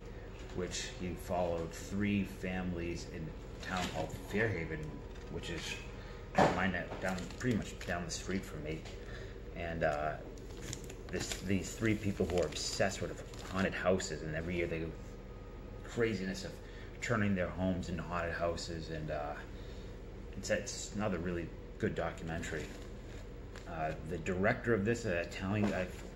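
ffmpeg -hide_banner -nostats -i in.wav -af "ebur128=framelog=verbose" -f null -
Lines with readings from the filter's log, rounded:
Integrated loudness:
  I:         -37.4 LUFS
  Threshold: -47.8 LUFS
Loudness range:
  LRA:         3.8 LU
  Threshold: -57.9 LUFS
  LRA low:   -40.0 LUFS
  LRA high:  -36.2 LUFS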